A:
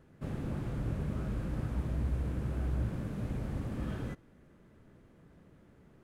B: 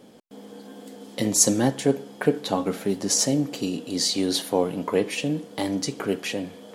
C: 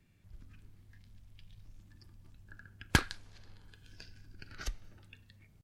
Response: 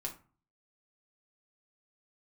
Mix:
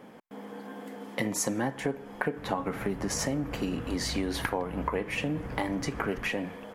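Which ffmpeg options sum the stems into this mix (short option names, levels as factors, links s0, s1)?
-filter_complex "[0:a]adelay=2150,volume=0.708[s0];[1:a]equalizer=f=170:t=o:w=0.77:g=3,volume=0.794[s1];[2:a]adelay=1500,volume=0.562[s2];[s0][s1][s2]amix=inputs=3:normalize=0,equalizer=f=1000:t=o:w=1:g=8,equalizer=f=2000:t=o:w=1:g=9,equalizer=f=4000:t=o:w=1:g=-7,equalizer=f=8000:t=o:w=1:g=-6,acompressor=threshold=0.0447:ratio=5"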